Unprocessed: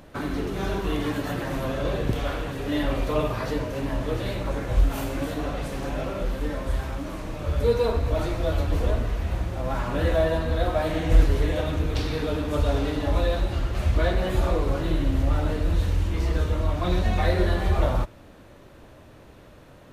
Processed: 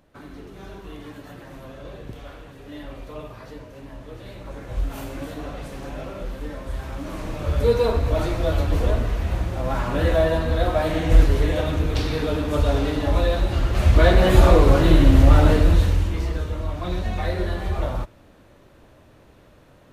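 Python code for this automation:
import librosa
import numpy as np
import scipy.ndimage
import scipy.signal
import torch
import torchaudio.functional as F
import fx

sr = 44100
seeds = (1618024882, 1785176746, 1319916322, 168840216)

y = fx.gain(x, sr, db=fx.line((4.11, -12.0), (4.98, -4.0), (6.71, -4.0), (7.23, 3.0), (13.37, 3.0), (14.34, 10.0), (15.54, 10.0), (16.42, -3.0)))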